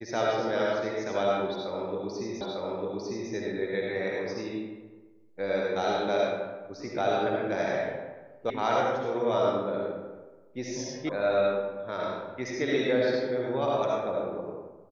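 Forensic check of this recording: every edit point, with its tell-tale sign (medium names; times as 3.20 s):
2.41 s: repeat of the last 0.9 s
8.50 s: sound stops dead
11.09 s: sound stops dead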